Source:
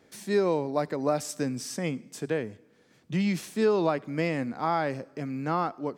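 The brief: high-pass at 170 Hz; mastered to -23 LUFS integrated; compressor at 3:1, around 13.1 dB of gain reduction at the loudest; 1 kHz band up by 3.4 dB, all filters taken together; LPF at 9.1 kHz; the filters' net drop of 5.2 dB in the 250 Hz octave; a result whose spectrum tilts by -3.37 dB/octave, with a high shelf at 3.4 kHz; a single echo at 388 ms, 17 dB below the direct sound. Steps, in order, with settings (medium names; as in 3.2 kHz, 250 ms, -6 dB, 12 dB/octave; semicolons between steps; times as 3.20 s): high-pass 170 Hz; low-pass 9.1 kHz; peaking EQ 250 Hz -6 dB; peaking EQ 1 kHz +4 dB; treble shelf 3.4 kHz +8.5 dB; compression 3:1, threshold -38 dBFS; delay 388 ms -17 dB; trim +16 dB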